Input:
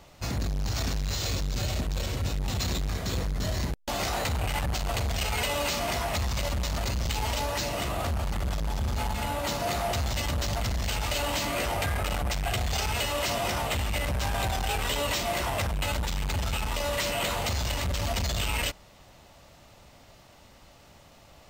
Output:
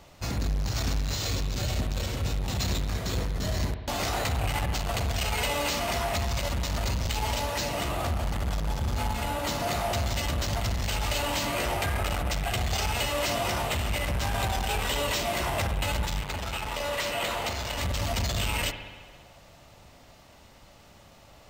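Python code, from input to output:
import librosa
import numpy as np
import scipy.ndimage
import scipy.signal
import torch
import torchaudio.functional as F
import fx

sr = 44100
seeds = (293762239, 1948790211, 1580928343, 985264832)

y = fx.bass_treble(x, sr, bass_db=-7, treble_db=-4, at=(16.21, 17.78))
y = fx.rev_spring(y, sr, rt60_s=1.5, pass_ms=(58,), chirp_ms=60, drr_db=8.5)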